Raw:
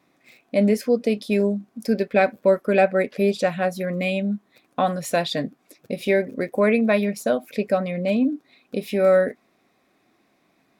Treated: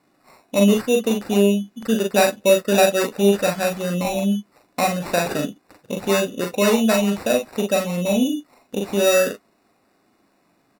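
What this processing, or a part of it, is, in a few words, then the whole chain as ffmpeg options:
crushed at another speed: -af "asetrate=55125,aresample=44100,acrusher=samples=11:mix=1:aa=0.000001,asetrate=35280,aresample=44100,aecho=1:1:40|50:0.631|0.266"

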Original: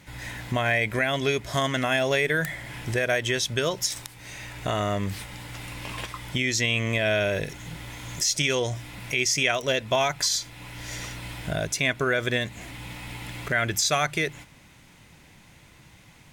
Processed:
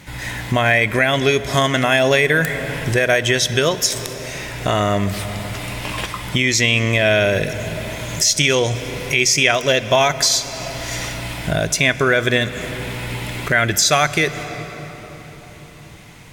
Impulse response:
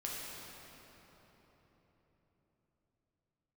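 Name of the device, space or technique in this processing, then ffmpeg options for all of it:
ducked reverb: -filter_complex "[0:a]asplit=3[link_01][link_02][link_03];[1:a]atrim=start_sample=2205[link_04];[link_02][link_04]afir=irnorm=-1:irlink=0[link_05];[link_03]apad=whole_len=719811[link_06];[link_05][link_06]sidechaincompress=threshold=-27dB:ratio=4:attack=16:release=390,volume=-8dB[link_07];[link_01][link_07]amix=inputs=2:normalize=0,volume=7.5dB"

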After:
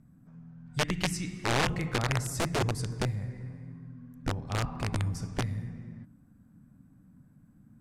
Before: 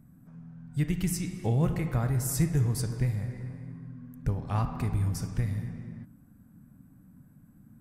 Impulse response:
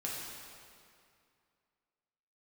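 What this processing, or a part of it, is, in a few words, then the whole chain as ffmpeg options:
overflowing digital effects unit: -filter_complex "[0:a]aeval=exprs='(mod(10*val(0)+1,2)-1)/10':channel_layout=same,lowpass=8600,asettb=1/sr,asplit=3[link_01][link_02][link_03];[link_01]atrim=end=0.664[link_04];[link_02]atrim=start=0.66:end=2.27,asetpts=PTS-STARTPTS,afade=type=in:duration=0.004:curve=qsin,afade=type=out:start_time=1.606:duration=0.004:curve=qsin,equalizer=frequency=2700:width_type=o:width=2.8:gain=5.5[link_05];[link_03]atrim=start=2.266[link_06];[link_04][link_05]acrossfade=duration=0.004:curve1=hsin:curve2=qsin[link_07];[link_07][link_06]acrossfade=duration=0.004:curve1=qsin:curve2=hsin,volume=-2.5dB"

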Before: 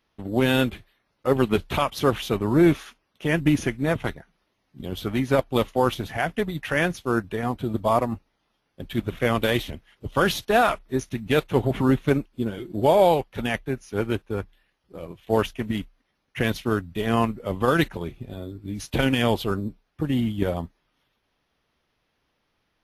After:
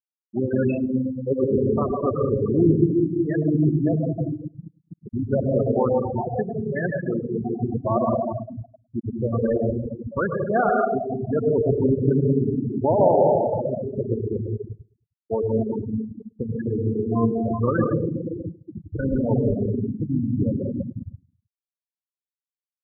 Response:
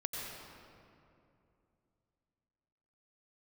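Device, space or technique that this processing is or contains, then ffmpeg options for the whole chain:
stairwell: -filter_complex "[1:a]atrim=start_sample=2205[link_01];[0:a][link_01]afir=irnorm=-1:irlink=0,afftfilt=real='re*gte(hypot(re,im),0.282)':imag='im*gte(hypot(re,im),0.282)':win_size=1024:overlap=0.75,highshelf=frequency=7000:gain=3.5,asplit=2[link_02][link_03];[link_03]adelay=104,lowpass=frequency=1000:poles=1,volume=-23dB,asplit=2[link_04][link_05];[link_05]adelay=104,lowpass=frequency=1000:poles=1,volume=0.45,asplit=2[link_06][link_07];[link_07]adelay=104,lowpass=frequency=1000:poles=1,volume=0.45[link_08];[link_02][link_04][link_06][link_08]amix=inputs=4:normalize=0"

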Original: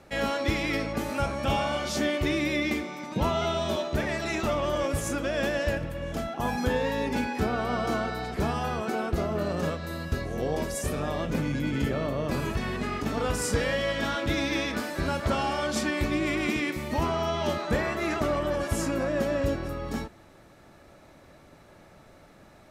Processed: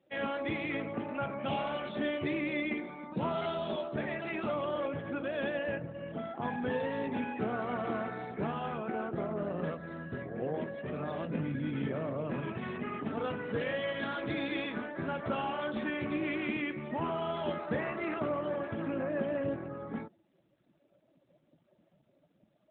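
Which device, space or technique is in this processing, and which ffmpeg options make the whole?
mobile call with aggressive noise cancelling: -filter_complex "[0:a]asettb=1/sr,asplit=3[link_01][link_02][link_03];[link_01]atrim=end=2.294[link_04];[link_02]atrim=start=2.29:end=2.85,asetpts=PTS-STARTPTS,afade=type=in:duration=0.004:curve=qsin,afade=type=out:start_time=0.556:duration=0.004:curve=qsin,bandreject=frequency=3600:width=30[link_05];[link_03]atrim=start=2.846[link_06];[link_04][link_05]acrossfade=duration=0.004:curve1=hsin:curve2=qsin[link_07];[link_07][link_06]acrossfade=duration=0.004:curve1=qsin:curve2=hsin,highpass=frequency=110:width=0.5412,highpass=frequency=110:width=1.3066,afftdn=noise_reduction=19:noise_floor=-43,volume=-5.5dB" -ar 8000 -c:a libopencore_amrnb -b:a 12200

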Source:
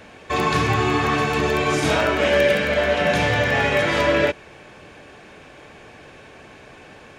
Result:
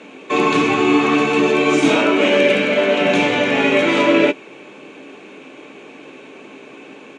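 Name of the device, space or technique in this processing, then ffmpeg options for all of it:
television speaker: -filter_complex "[0:a]highpass=frequency=180:width=0.5412,highpass=frequency=180:width=1.3066,equalizer=frequency=280:width_type=q:width=4:gain=9,equalizer=frequency=400:width_type=q:width=4:gain=5,equalizer=frequency=710:width_type=q:width=4:gain=-4,equalizer=frequency=1700:width_type=q:width=4:gain=-8,equalizer=frequency=2500:width_type=q:width=4:gain=5,equalizer=frequency=5000:width_type=q:width=4:gain=-9,lowpass=frequency=8100:width=0.5412,lowpass=frequency=8100:width=1.3066,asplit=2[link_01][link_02];[link_02]adelay=15,volume=-13dB[link_03];[link_01][link_03]amix=inputs=2:normalize=0,volume=3.5dB"

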